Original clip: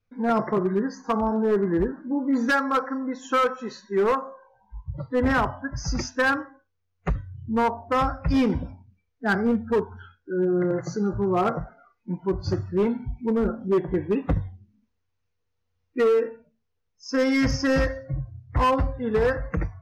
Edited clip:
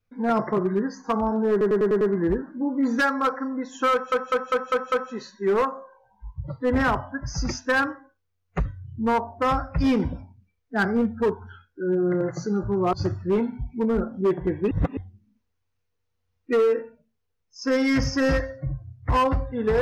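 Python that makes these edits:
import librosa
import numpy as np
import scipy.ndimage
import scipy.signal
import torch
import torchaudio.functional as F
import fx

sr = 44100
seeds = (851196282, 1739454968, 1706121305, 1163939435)

y = fx.edit(x, sr, fx.stutter(start_s=1.51, slice_s=0.1, count=6),
    fx.stutter(start_s=3.42, slice_s=0.2, count=6),
    fx.cut(start_s=11.43, length_s=0.97),
    fx.reverse_span(start_s=14.18, length_s=0.26), tone=tone)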